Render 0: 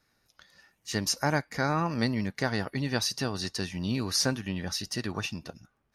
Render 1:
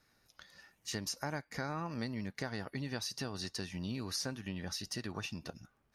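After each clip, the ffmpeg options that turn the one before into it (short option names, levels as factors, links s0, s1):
-af "acompressor=threshold=0.0112:ratio=3"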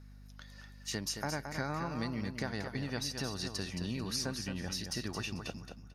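-af "aecho=1:1:221|442|663:0.447|0.107|0.0257,aeval=exprs='val(0)+0.00224*(sin(2*PI*50*n/s)+sin(2*PI*2*50*n/s)/2+sin(2*PI*3*50*n/s)/3+sin(2*PI*4*50*n/s)/4+sin(2*PI*5*50*n/s)/5)':c=same,volume=1.19"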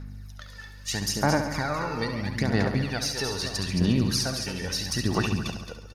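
-af "aphaser=in_gain=1:out_gain=1:delay=2.3:decay=0.61:speed=0.77:type=sinusoidal,aecho=1:1:69|138|207|276|345|414|483:0.376|0.21|0.118|0.066|0.037|0.0207|0.0116,volume=2.11"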